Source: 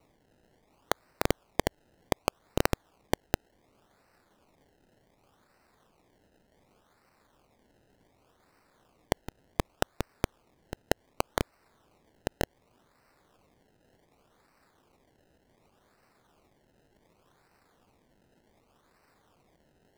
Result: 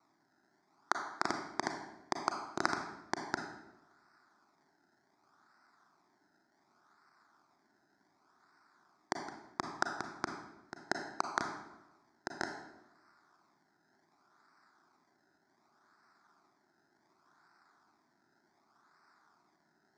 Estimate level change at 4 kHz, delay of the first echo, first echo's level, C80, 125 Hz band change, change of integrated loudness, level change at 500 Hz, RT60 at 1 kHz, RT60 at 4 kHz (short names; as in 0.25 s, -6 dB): -6.0 dB, none, none, 8.0 dB, -15.5 dB, -4.5 dB, -10.0 dB, 0.90 s, 0.70 s